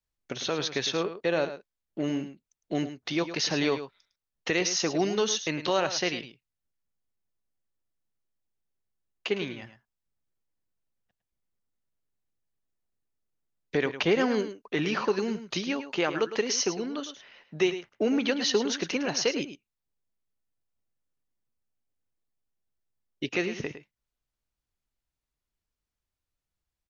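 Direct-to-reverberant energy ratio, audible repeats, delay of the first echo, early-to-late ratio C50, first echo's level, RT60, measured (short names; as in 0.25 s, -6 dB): none, 1, 0.107 s, none, -11.5 dB, none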